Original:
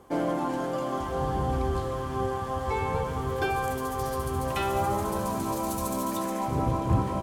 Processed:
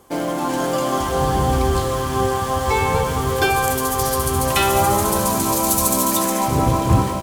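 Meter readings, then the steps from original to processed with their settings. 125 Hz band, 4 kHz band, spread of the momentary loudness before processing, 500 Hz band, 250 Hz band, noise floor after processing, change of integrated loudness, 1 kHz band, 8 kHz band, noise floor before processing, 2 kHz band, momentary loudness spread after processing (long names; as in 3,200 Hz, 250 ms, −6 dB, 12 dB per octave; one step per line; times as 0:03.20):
+9.0 dB, +15.5 dB, 4 LU, +9.0 dB, +8.5 dB, −23 dBFS, +10.5 dB, +10.0 dB, +19.0 dB, −33 dBFS, +12.0 dB, 5 LU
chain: high-shelf EQ 3,000 Hz +11.5 dB
automatic gain control gain up to 6 dB
in parallel at −11 dB: bit reduction 5 bits
on the sum: level +1 dB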